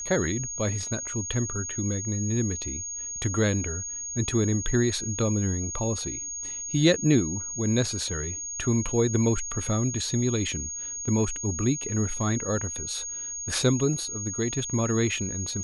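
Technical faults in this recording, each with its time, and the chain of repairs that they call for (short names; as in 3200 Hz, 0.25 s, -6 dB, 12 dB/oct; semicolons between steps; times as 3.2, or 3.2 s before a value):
tone 6600 Hz -32 dBFS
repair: notch 6600 Hz, Q 30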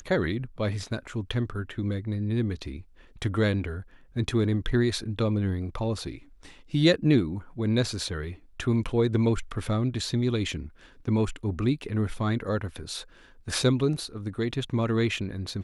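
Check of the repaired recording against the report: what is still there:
none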